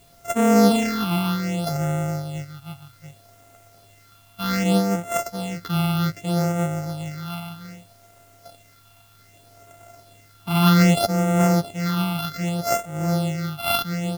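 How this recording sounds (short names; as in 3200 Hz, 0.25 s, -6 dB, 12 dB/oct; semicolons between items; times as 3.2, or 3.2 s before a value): a buzz of ramps at a fixed pitch in blocks of 64 samples; phasing stages 6, 0.64 Hz, lowest notch 480–4400 Hz; a quantiser's noise floor 10-bit, dither triangular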